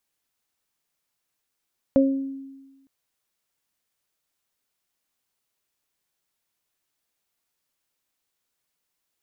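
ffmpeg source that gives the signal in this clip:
-f lavfi -i "aevalsrc='0.2*pow(10,-3*t/1.25)*sin(2*PI*271*t)+0.188*pow(10,-3*t/0.42)*sin(2*PI*542*t)':d=0.91:s=44100"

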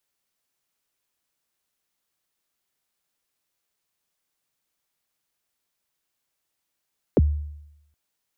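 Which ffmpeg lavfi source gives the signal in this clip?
-f lavfi -i "aevalsrc='0.266*pow(10,-3*t/0.86)*sin(2*PI*(580*0.031/log(74/580)*(exp(log(74/580)*min(t,0.031)/0.031)-1)+74*max(t-0.031,0)))':d=0.77:s=44100"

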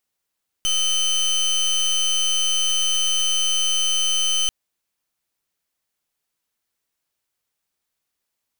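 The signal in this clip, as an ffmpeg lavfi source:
-f lavfi -i "aevalsrc='0.1*(2*lt(mod(3060*t,1),0.26)-1)':d=3.84:s=44100"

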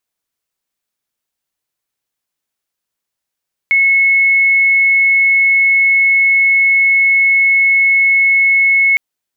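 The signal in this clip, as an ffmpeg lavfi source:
-f lavfi -i "sine=f=2190:d=5.26:r=44100,volume=10.56dB"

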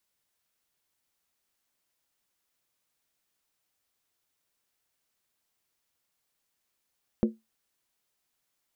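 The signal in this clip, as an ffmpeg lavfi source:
-f lavfi -i "aevalsrc='0.141*pow(10,-3*t/0.2)*sin(2*PI*222*t)+0.075*pow(10,-3*t/0.158)*sin(2*PI*353.9*t)+0.0398*pow(10,-3*t/0.137)*sin(2*PI*474.2*t)+0.0211*pow(10,-3*t/0.132)*sin(2*PI*509.7*t)+0.0112*pow(10,-3*t/0.123)*sin(2*PI*589*t)':d=0.63:s=44100"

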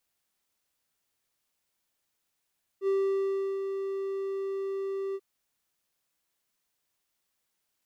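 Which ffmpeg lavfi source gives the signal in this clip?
-f lavfi -i "aevalsrc='0.0891*(1-4*abs(mod(390*t+0.25,1)-0.5))':d=2.387:s=44100,afade=t=in:d=0.065,afade=t=out:st=0.065:d=0.713:silence=0.447,afade=t=out:st=2.34:d=0.047"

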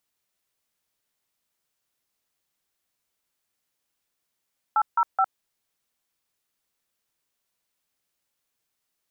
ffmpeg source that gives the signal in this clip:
-f lavfi -i "aevalsrc='0.1*clip(min(mod(t,0.213),0.058-mod(t,0.213))/0.002,0,1)*(eq(floor(t/0.213),0)*(sin(2*PI*852*mod(t,0.213))+sin(2*PI*1336*mod(t,0.213)))+eq(floor(t/0.213),1)*(sin(2*PI*941*mod(t,0.213))+sin(2*PI*1336*mod(t,0.213)))+eq(floor(t/0.213),2)*(sin(2*PI*770*mod(t,0.213))+sin(2*PI*1336*mod(t,0.213))))':d=0.639:s=44100"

